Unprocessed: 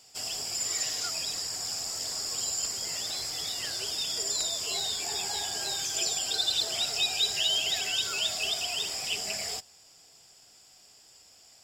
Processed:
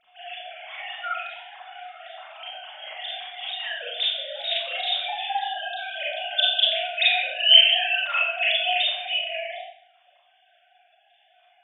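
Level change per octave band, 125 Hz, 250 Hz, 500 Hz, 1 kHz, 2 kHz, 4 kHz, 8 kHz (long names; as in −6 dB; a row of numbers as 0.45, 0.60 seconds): below −40 dB, below −30 dB, +9.0 dB, +12.0 dB, +12.0 dB, +7.5 dB, below −40 dB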